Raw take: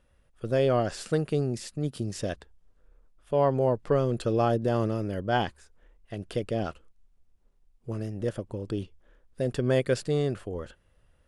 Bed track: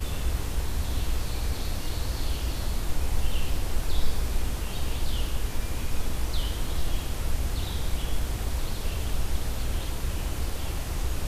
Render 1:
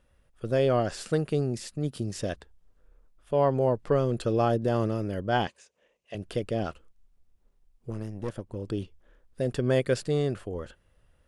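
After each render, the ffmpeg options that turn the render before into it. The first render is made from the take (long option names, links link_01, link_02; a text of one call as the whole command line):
ffmpeg -i in.wav -filter_complex "[0:a]asettb=1/sr,asplit=3[link_01][link_02][link_03];[link_01]atrim=end=5.474[link_04];[link_02]atrim=start=5.47:end=6.15,asetpts=PTS-STARTPTS,afade=type=in:duration=0.004:curve=qsin,afade=type=out:start_time=0.676:duration=0.004:curve=qsin,highpass=250,equalizer=frequency=310:width_type=q:width=4:gain=-9,equalizer=frequency=560:width_type=q:width=4:gain=6,equalizer=frequency=830:width_type=q:width=4:gain=-4,equalizer=frequency=1400:width_type=q:width=4:gain=-9,equalizer=frequency=2700:width_type=q:width=4:gain=8,equalizer=frequency=6300:width_type=q:width=4:gain=6,lowpass=frequency=9400:width=0.5412,lowpass=frequency=9400:width=1.3066[link_05];[link_03]atrim=start=6.146[link_06];[link_04][link_05]acrossfade=duration=0.004:curve1=hsin:curve2=qsin[link_07];[link_07][link_06]acrossfade=duration=0.004:curve1=qsin:curve2=hsin,asettb=1/sr,asplit=3[link_08][link_09][link_10];[link_08]atrim=end=7.904[link_11];[link_09]atrim=start=7.9:end=8.56,asetpts=PTS-STARTPTS,afade=type=in:duration=0.004:curve=qsin,afade=type=out:start_time=0.656:duration=0.004:curve=qsin,aeval=exprs='(tanh(17.8*val(0)+0.65)-tanh(0.65))/17.8':channel_layout=same[link_12];[link_10]atrim=start=8.556[link_13];[link_11][link_12]acrossfade=duration=0.004:curve1=hsin:curve2=qsin[link_14];[link_14][link_13]acrossfade=duration=0.004:curve1=qsin:curve2=hsin" out.wav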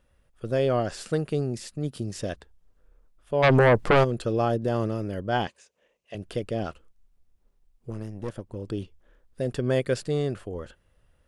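ffmpeg -i in.wav -filter_complex "[0:a]asplit=3[link_01][link_02][link_03];[link_01]afade=type=out:start_time=3.42:duration=0.02[link_04];[link_02]aeval=exprs='0.224*sin(PI/2*2.82*val(0)/0.224)':channel_layout=same,afade=type=in:start_time=3.42:duration=0.02,afade=type=out:start_time=4.03:duration=0.02[link_05];[link_03]afade=type=in:start_time=4.03:duration=0.02[link_06];[link_04][link_05][link_06]amix=inputs=3:normalize=0" out.wav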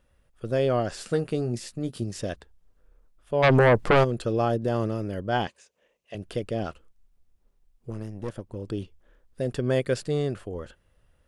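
ffmpeg -i in.wav -filter_complex "[0:a]asettb=1/sr,asplit=3[link_01][link_02][link_03];[link_01]atrim=end=1.094[link_04];[link_02]atrim=start=1.09:end=2.04,asetpts=PTS-STARTPTS,afade=type=in:duration=0.004:curve=qsin,afade=type=out:start_time=0.946:duration=0.004:curve=qsin,asplit=2[link_05][link_06];[link_06]adelay=17,volume=-8dB[link_07];[link_05][link_07]amix=inputs=2:normalize=0,atrim=end_sample=41895[link_08];[link_03]atrim=start=2.036[link_09];[link_04][link_08]acrossfade=duration=0.004:curve1=hsin:curve2=qsin[link_10];[link_10][link_09]acrossfade=duration=0.004:curve1=qsin:curve2=hsin" out.wav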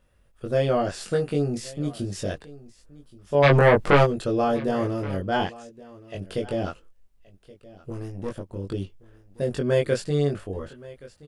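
ffmpeg -i in.wav -filter_complex "[0:a]asplit=2[link_01][link_02];[link_02]adelay=21,volume=-2dB[link_03];[link_01][link_03]amix=inputs=2:normalize=0,aecho=1:1:1124:0.0944" out.wav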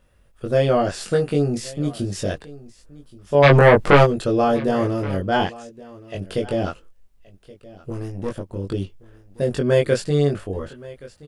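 ffmpeg -i in.wav -af "volume=4.5dB" out.wav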